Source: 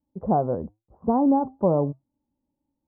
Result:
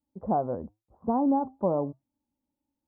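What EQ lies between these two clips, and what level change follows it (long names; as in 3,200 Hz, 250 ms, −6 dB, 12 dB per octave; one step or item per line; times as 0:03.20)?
low-shelf EQ 61 Hz −7 dB
parametric band 150 Hz −6.5 dB 0.49 octaves
parametric band 420 Hz −3.5 dB 0.78 octaves
−3.0 dB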